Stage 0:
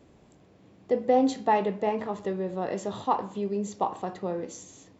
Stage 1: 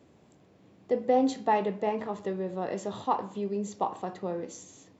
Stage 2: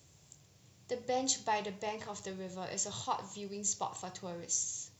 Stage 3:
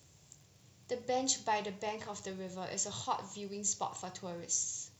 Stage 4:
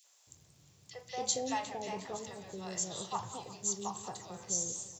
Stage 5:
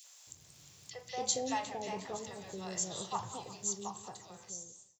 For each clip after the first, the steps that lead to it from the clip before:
high-pass filter 80 Hz; level −2 dB
drawn EQ curve 140 Hz 0 dB, 220 Hz −17 dB, 1,800 Hz −6 dB, 4,000 Hz +4 dB, 6,000 Hz +12 dB; level +2 dB
surface crackle 22 per second −50 dBFS
three-band delay without the direct sound highs, mids, lows 40/270 ms, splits 640/2,300 Hz; feedback echo with a swinging delay time 178 ms, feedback 67%, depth 216 cents, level −15 dB
fade-out on the ending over 1.57 s; one half of a high-frequency compander encoder only

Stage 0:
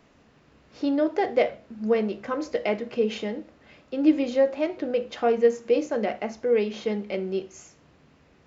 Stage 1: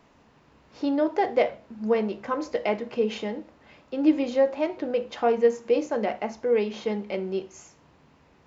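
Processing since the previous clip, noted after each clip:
parametric band 930 Hz +7 dB 0.45 octaves
level −1 dB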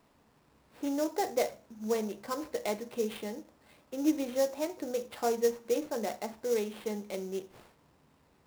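sample-rate reduction 6,300 Hz, jitter 20%
level −7.5 dB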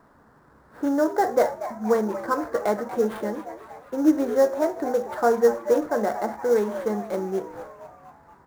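high shelf with overshoot 2,000 Hz −8.5 dB, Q 3
echo with shifted repeats 237 ms, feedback 57%, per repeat +120 Hz, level −13 dB
level +9 dB

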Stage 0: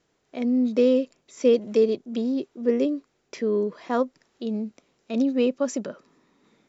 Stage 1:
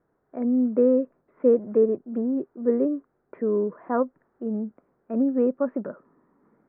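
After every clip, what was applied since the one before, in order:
Butterworth low-pass 1,600 Hz 36 dB per octave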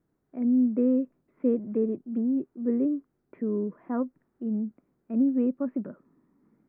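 flat-topped bell 860 Hz −10 dB 2.4 octaves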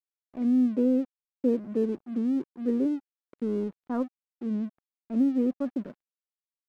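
dead-zone distortion −48 dBFS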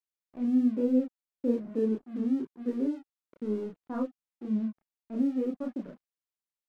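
multi-voice chorus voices 6, 0.96 Hz, delay 30 ms, depth 3.5 ms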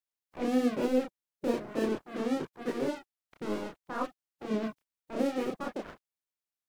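ceiling on every frequency bin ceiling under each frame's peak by 24 dB
level −1.5 dB

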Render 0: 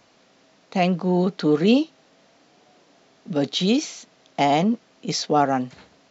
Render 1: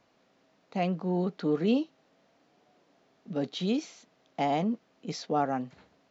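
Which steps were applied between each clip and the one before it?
high-shelf EQ 3,300 Hz −8.5 dB
level −8.5 dB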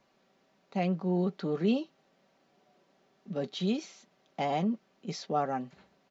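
comb filter 5.2 ms, depth 45%
level −2.5 dB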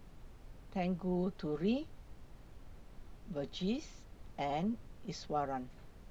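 background noise brown −45 dBFS
level −6 dB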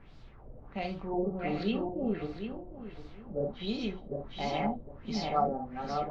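feedback delay that plays each chunk backwards 378 ms, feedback 47%, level −1 dB
reverb whose tail is shaped and stops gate 90 ms flat, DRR 3.5 dB
auto-filter low-pass sine 1.4 Hz 530–4,800 Hz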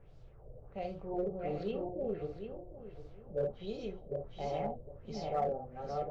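graphic EQ with 10 bands 125 Hz +5 dB, 250 Hz −12 dB, 500 Hz +9 dB, 1,000 Hz −7 dB, 2,000 Hz −7 dB, 4,000 Hz −9 dB
in parallel at −6 dB: gain into a clipping stage and back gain 26 dB
on the sum: level −7 dB

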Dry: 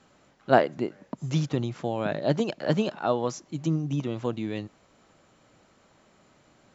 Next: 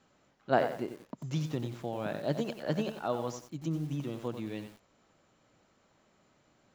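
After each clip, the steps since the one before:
feedback echo at a low word length 91 ms, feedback 35%, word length 7 bits, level −8.5 dB
level −7.5 dB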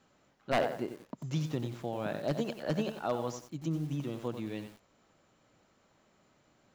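wave folding −20.5 dBFS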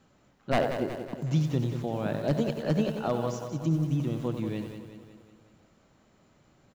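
low-shelf EQ 260 Hz +8.5 dB
repeating echo 184 ms, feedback 55%, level −9 dB
level +1.5 dB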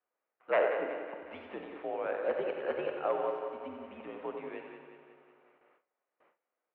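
four-comb reverb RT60 1.6 s, combs from 33 ms, DRR 6 dB
single-sideband voice off tune −66 Hz 510–2,600 Hz
noise gate with hold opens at −56 dBFS

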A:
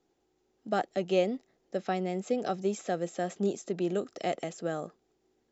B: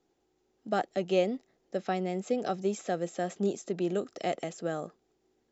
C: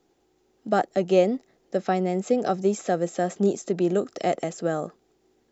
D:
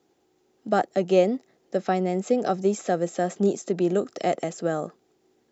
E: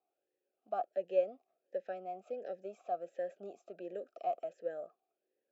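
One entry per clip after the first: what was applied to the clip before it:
no processing that can be heard
dynamic equaliser 3,100 Hz, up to −6 dB, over −52 dBFS, Q 1.1; level +7.5 dB
high-pass filter 93 Hz
formant filter swept between two vowels a-e 1.4 Hz; level −7.5 dB

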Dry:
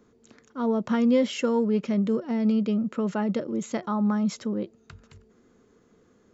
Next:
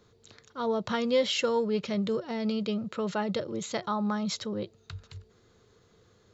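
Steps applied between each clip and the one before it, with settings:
graphic EQ with 15 bands 100 Hz +10 dB, 250 Hz −12 dB, 4,000 Hz +11 dB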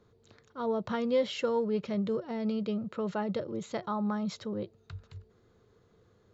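high-shelf EQ 2,300 Hz −11 dB
level −1.5 dB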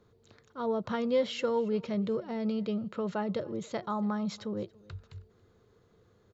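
single-tap delay 281 ms −23.5 dB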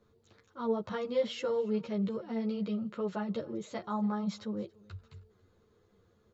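string-ensemble chorus

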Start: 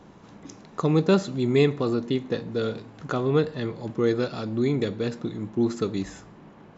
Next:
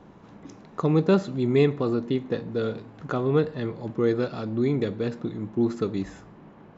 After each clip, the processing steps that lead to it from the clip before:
high-shelf EQ 4,100 Hz −11 dB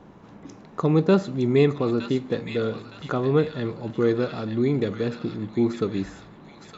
delay with a high-pass on its return 914 ms, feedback 37%, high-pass 1,800 Hz, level −4 dB
level +1.5 dB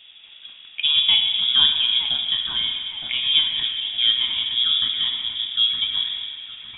dense smooth reverb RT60 3.4 s, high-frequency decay 0.55×, DRR 3.5 dB
voice inversion scrambler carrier 3,600 Hz

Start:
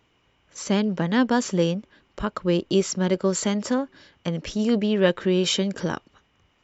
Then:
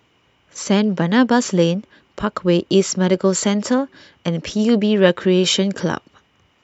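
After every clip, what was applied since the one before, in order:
high-pass filter 73 Hz
level +6 dB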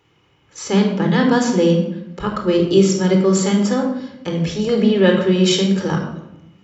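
rectangular room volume 2,400 cubic metres, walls furnished, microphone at 4.1 metres
level −4 dB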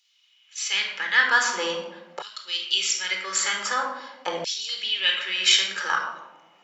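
auto-filter high-pass saw down 0.45 Hz 710–4,500 Hz

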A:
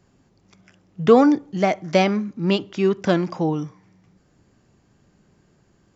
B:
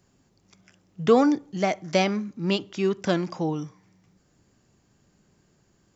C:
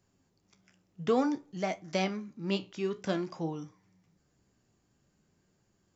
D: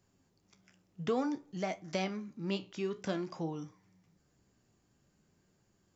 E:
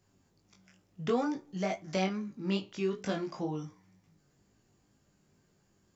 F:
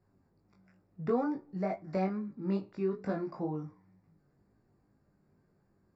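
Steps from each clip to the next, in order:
high-shelf EQ 4,700 Hz +9.5 dB; level −5 dB
flanger 0.53 Hz, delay 9.1 ms, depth 8.9 ms, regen +63%; level −4 dB
downward compressor 1.5 to 1, threshold −37 dBFS, peak gain reduction 5.5 dB
chorus effect 2.2 Hz, delay 19 ms, depth 2.2 ms; level +5.5 dB
moving average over 14 samples

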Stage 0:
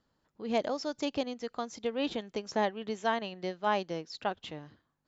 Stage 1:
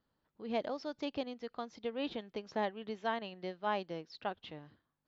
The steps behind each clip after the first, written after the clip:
low-pass filter 4,700 Hz 24 dB per octave
level −5.5 dB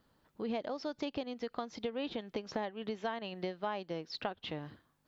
downward compressor 6 to 1, threshold −45 dBFS, peak gain reduction 15 dB
level +10.5 dB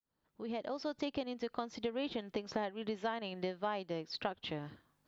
fade in at the beginning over 0.80 s

